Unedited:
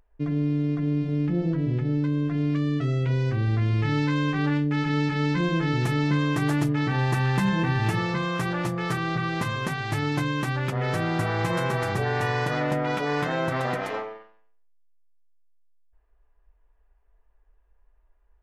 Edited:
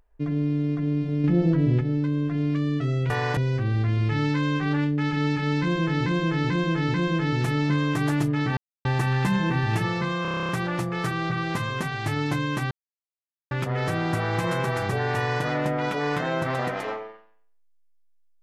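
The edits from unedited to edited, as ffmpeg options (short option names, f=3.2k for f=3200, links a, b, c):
-filter_complex "[0:a]asplit=19[a][b][c][d][e][f][g][h][i][j][k][l][m][n][o][p][q][r][s];[a]atrim=end=1.242[t];[b]atrim=start=1.238:end=1.812,asetpts=PTS-STARTPTS,volume=4.5dB[u];[c]atrim=start=1.808:end=3.102[v];[d]atrim=start=12.218:end=12.492[w];[e]atrim=start=3.098:end=5.792[x];[f]atrim=start=5.348:end=5.792[y];[g]atrim=start=5.348:end=5.792[z];[h]atrim=start=5.348:end=6.98,asetpts=PTS-STARTPTS,afade=t=out:st=1.628:d=0.004:c=hsin,apad=pad_dur=0.28[aa];[i]atrim=start=6.98:end=8.382,asetpts=PTS-STARTPTS,afade=t=in:d=0.004:c=hsin[ab];[j]atrim=start=8.348:end=8.382[ac];[k]atrim=start=8.348:end=8.382[ad];[l]atrim=start=8.348:end=8.382[ae];[m]atrim=start=8.348:end=8.382[af];[n]atrim=start=8.348:end=8.382[ag];[o]atrim=start=8.348:end=8.382[ah];[p]atrim=start=8.348:end=8.382[ai];[q]atrim=start=8.348:end=8.382[aj];[r]atrim=start=8.348:end=10.57,asetpts=PTS-STARTPTS,afade=t=out:st=2.218:d=0.004:c=hsin,apad=pad_dur=0.8[ak];[s]atrim=start=10.57,asetpts=PTS-STARTPTS,afade=t=in:d=0.004:c=hsin[al];[t][u]acrossfade=d=0.004:c1=hsin:c2=hsin[am];[am][v]acrossfade=d=0.004:c1=hsin:c2=hsin[an];[an][w]acrossfade=d=0.004:c1=hsin:c2=hsin[ao];[ao][x]acrossfade=d=0.004:c1=hsin:c2=hsin[ap];[ap][y]acrossfade=d=0.004:c1=hsin:c2=hsin[aq];[aq][z]acrossfade=d=0.004:c1=hsin:c2=hsin[ar];[aa][ab]concat=n=2:v=0:a=1[as];[ar][as]acrossfade=d=0.004:c1=hsin:c2=hsin[at];[at][ac]acrossfade=d=0.004:c1=hsin:c2=hsin[au];[au][ad]acrossfade=d=0.004:c1=hsin:c2=hsin[av];[av][ae]acrossfade=d=0.004:c1=hsin:c2=hsin[aw];[aw][af]acrossfade=d=0.004:c1=hsin:c2=hsin[ax];[ax][ag]acrossfade=d=0.004:c1=hsin:c2=hsin[ay];[ay][ah]acrossfade=d=0.004:c1=hsin:c2=hsin[az];[az][ai]acrossfade=d=0.004:c1=hsin:c2=hsin[ba];[ba][aj]acrossfade=d=0.004:c1=hsin:c2=hsin[bb];[ak][al]concat=n=2:v=0:a=1[bc];[bb][bc]acrossfade=d=0.004:c1=hsin:c2=hsin"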